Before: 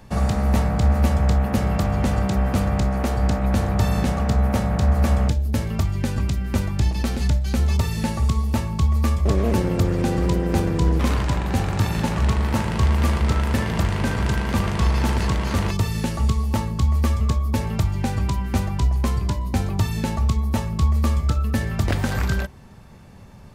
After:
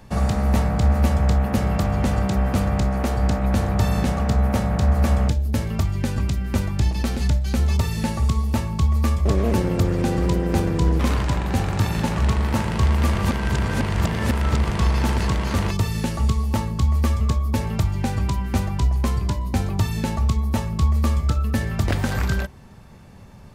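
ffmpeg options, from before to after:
-filter_complex "[0:a]asplit=3[a][b][c];[a]atrim=end=13.152[d];[b]atrim=start=13.148:end=14.702,asetpts=PTS-STARTPTS,areverse[e];[c]atrim=start=14.698[f];[d][e]acrossfade=d=0.004:c1=hsin:c2=hsin[g];[g][f]acrossfade=d=0.004:c1=hsin:c2=hsin"

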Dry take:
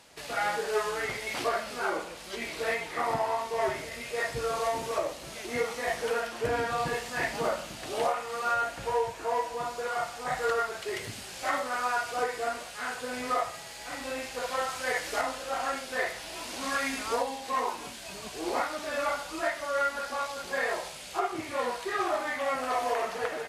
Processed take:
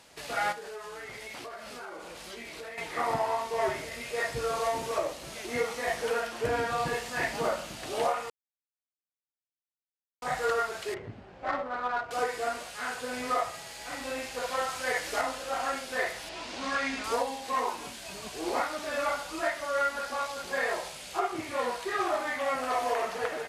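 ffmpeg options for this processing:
-filter_complex "[0:a]asettb=1/sr,asplit=3[a][b][c];[a]atrim=end=0.524[d];[b]atrim=start=0.52:end=2.78,asetpts=PTS-STARTPTS,afade=t=in:d=0.004:c=qsin,afade=t=out:st=2.256:d=0.004:c=qsin,acompressor=threshold=-39dB:ratio=6:attack=3.2:release=140:knee=1:detection=peak[e];[c]atrim=start=2.776[f];[d][e]acrossfade=d=0.004:c1=hsin:c2=qsin[g];[g][f]acrossfade=d=0.004:c1=qsin:c2=hsin,asettb=1/sr,asplit=3[h][i][j];[h]atrim=end=10.944[k];[i]atrim=start=10.94:end=12.11,asetpts=PTS-STARTPTS,afade=t=in:d=0.004:c=qsin,afade=t=out:st=1.166:d=0.004:c=qsin,adynamicsmooth=sensitivity=1:basefreq=1k[l];[j]atrim=start=12.106[m];[k][l]acrossfade=d=0.004:c1=hsin:c2=qsin[n];[n][m]acrossfade=d=0.004:c1=qsin:c2=hsin,asettb=1/sr,asplit=3[o][p][q];[o]atrim=end=16.294[r];[p]atrim=start=16.29:end=17.04,asetpts=PTS-STARTPTS,afade=t=in:d=0.004:c=qsin,afade=t=out:st=0.746:d=0.004:c=qsin,lowpass=5.4k[s];[q]atrim=start=17.036[t];[r][s]acrossfade=d=0.004:c1=hsin:c2=qsin[u];[u][t]acrossfade=d=0.004:c1=qsin:c2=hsin,asplit=3[v][w][x];[v]atrim=end=8.3,asetpts=PTS-STARTPTS,afade=t=out:st=8.296:d=0.004:c=hsin[y];[w]atrim=start=8.3:end=10.22,asetpts=PTS-STARTPTS,volume=0[z];[x]atrim=start=10.22,asetpts=PTS-STARTPTS,afade=t=in:d=0.004:c=hsin[aa];[y][z][aa]concat=n=3:v=0:a=1"

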